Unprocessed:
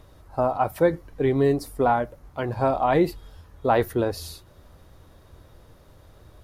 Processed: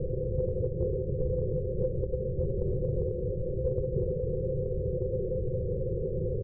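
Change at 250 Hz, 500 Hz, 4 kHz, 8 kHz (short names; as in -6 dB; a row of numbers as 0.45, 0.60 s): -9.0 dB, -5.5 dB, under -40 dB, under -35 dB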